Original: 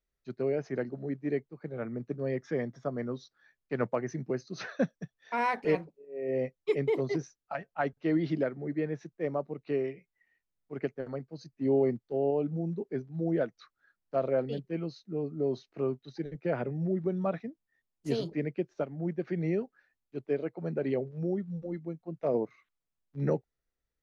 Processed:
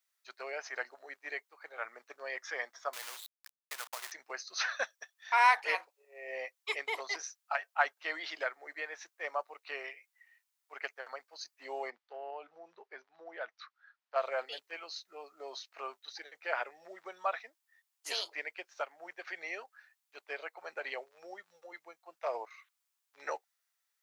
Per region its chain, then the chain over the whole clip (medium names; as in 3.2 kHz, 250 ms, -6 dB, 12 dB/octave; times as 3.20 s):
2.93–4.12 s: steep low-pass 3.7 kHz 48 dB/octave + compression 16:1, threshold -38 dBFS + companded quantiser 4-bit
11.90–14.16 s: compression 2:1, threshold -32 dBFS + distance through air 190 m
whole clip: high-pass 840 Hz 24 dB/octave; treble shelf 4.3 kHz +6.5 dB; trim +6.5 dB